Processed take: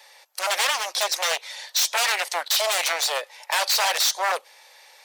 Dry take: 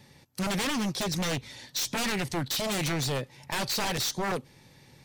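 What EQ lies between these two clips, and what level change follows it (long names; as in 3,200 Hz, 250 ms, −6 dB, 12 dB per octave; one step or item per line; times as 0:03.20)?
Butterworth high-pass 570 Hz 36 dB per octave
+9.0 dB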